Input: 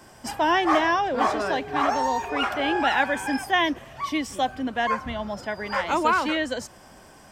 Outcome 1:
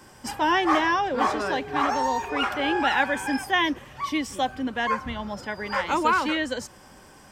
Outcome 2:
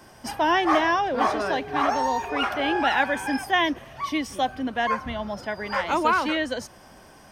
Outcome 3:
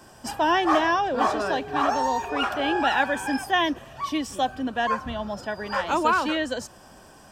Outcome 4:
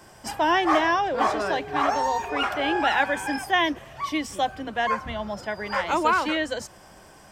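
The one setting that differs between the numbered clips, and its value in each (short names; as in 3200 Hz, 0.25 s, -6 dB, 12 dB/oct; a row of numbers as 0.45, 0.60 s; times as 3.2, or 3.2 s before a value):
notch, frequency: 670, 7500, 2100, 250 Hz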